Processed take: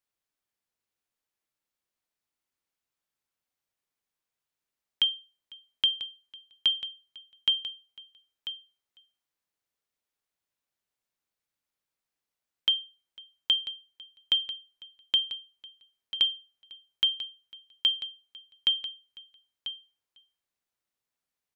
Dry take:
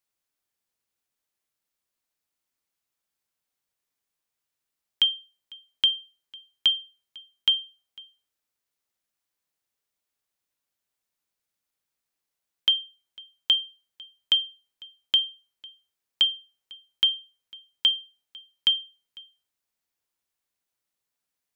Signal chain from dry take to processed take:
high-shelf EQ 4,900 Hz −5 dB
single-tap delay 992 ms −12 dB
level −2 dB

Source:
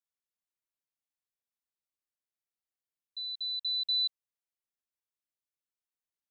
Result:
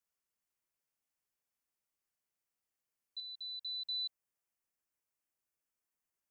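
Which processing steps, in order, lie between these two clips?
parametric band 3,800 Hz −8.5 dB 0.41 octaves, from 0:03.20 −15 dB
level +4 dB

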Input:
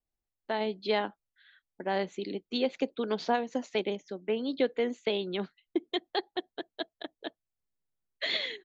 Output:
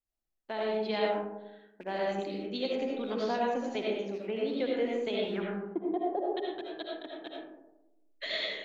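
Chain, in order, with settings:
loose part that buzzes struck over −49 dBFS, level −39 dBFS
0:05.31–0:06.29: low-pass with resonance 1,800 Hz → 500 Hz, resonance Q 2.8
comb and all-pass reverb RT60 0.99 s, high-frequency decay 0.3×, pre-delay 40 ms, DRR −3 dB
level −6 dB

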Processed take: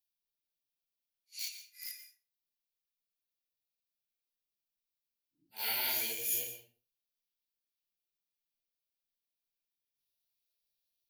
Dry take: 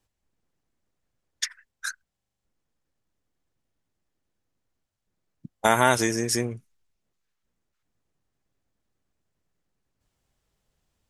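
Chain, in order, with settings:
random phases in long frames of 200 ms
low-shelf EQ 400 Hz −3.5 dB
in parallel at −6 dB: centre clipping without the shift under −25.5 dBFS
on the sum: first-order pre-emphasis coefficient 0.97
phaser with its sweep stopped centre 2,800 Hz, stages 4
formants moved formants +4 semitones
on a send at −9.5 dB: convolution reverb RT60 0.35 s, pre-delay 107 ms

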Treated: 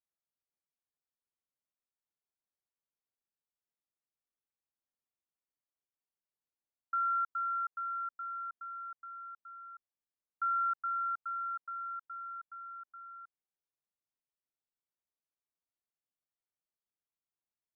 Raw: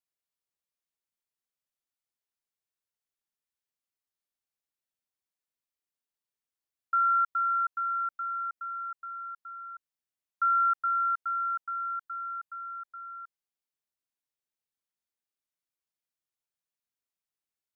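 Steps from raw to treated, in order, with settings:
low-pass filter 1,300 Hz
level −3.5 dB

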